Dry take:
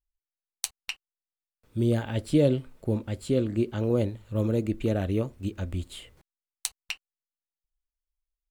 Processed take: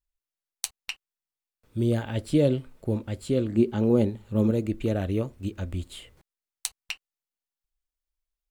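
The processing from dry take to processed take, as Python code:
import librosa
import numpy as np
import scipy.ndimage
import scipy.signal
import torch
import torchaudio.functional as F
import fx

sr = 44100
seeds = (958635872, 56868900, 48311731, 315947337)

y = fx.small_body(x, sr, hz=(220.0, 390.0, 820.0), ring_ms=45, db=8, at=(3.54, 4.51))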